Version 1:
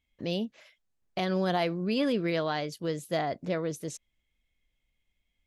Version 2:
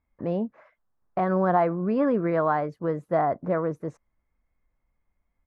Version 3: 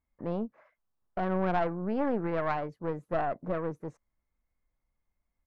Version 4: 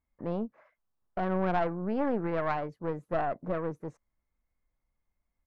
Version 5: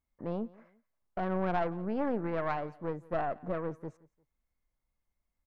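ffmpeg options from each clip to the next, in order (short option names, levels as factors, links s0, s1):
-af "firequalizer=gain_entry='entry(390,0);entry(1100,8);entry(3100,-25);entry(11000,-30)':delay=0.05:min_phase=1,volume=1.58"
-af "aeval=exprs='(tanh(7.94*val(0)+0.75)-tanh(0.75))/7.94':c=same,volume=0.794"
-af anull
-af "aecho=1:1:174|348:0.075|0.024,volume=0.75"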